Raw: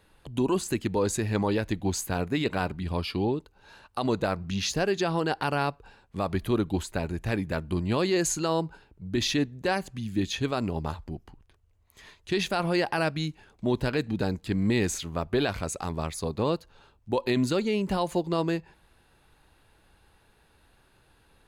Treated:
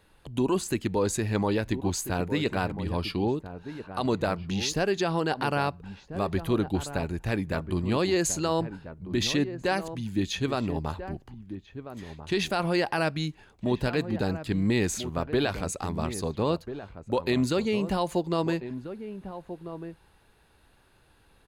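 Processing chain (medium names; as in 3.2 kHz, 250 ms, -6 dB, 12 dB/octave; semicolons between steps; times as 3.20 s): echo from a far wall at 230 m, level -11 dB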